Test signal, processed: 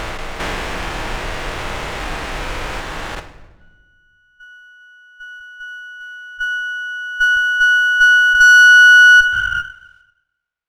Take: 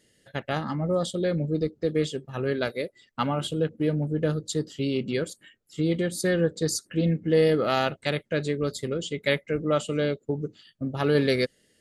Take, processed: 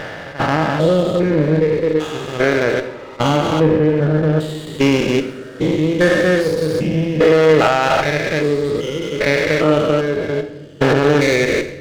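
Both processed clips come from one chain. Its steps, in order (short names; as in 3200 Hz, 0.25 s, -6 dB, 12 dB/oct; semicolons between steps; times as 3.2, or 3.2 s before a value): stepped spectrum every 0.4 s; reverb removal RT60 2 s; LPF 3100 Hz 12 dB/oct; dynamic EQ 1200 Hz, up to -6 dB, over -56 dBFS, Q 7.4; added harmonics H 7 -26 dB, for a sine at -13.5 dBFS; bell 160 Hz -11.5 dB 2.9 oct; shoebox room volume 570 m³, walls mixed, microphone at 0.58 m; maximiser +28.5 dB; running maximum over 5 samples; gain -1.5 dB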